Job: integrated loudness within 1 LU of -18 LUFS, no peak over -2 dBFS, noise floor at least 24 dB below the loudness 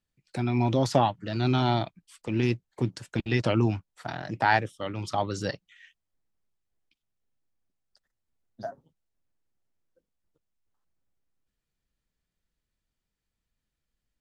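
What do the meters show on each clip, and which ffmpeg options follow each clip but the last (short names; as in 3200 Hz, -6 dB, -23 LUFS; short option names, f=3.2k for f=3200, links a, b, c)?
loudness -27.5 LUFS; peak -8.0 dBFS; loudness target -18.0 LUFS
-> -af "volume=9.5dB,alimiter=limit=-2dB:level=0:latency=1"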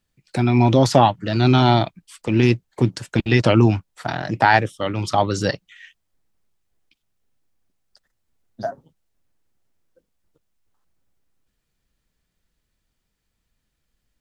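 loudness -18.5 LUFS; peak -2.0 dBFS; noise floor -75 dBFS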